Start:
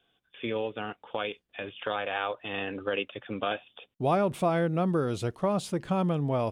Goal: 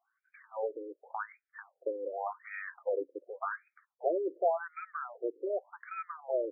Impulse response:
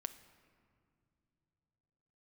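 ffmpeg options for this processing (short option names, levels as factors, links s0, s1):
-af "afftfilt=real='re*between(b*sr/1024,370*pow(1800/370,0.5+0.5*sin(2*PI*0.88*pts/sr))/1.41,370*pow(1800/370,0.5+0.5*sin(2*PI*0.88*pts/sr))*1.41)':imag='im*between(b*sr/1024,370*pow(1800/370,0.5+0.5*sin(2*PI*0.88*pts/sr))/1.41,370*pow(1800/370,0.5+0.5*sin(2*PI*0.88*pts/sr))*1.41)':win_size=1024:overlap=0.75"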